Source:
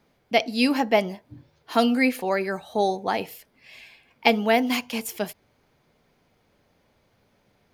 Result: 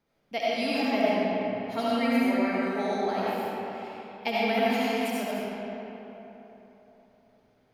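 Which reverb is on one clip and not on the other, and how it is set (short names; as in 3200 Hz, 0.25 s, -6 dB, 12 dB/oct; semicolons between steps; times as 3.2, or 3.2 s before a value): digital reverb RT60 3.7 s, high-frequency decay 0.55×, pre-delay 35 ms, DRR -8.5 dB; gain -12.5 dB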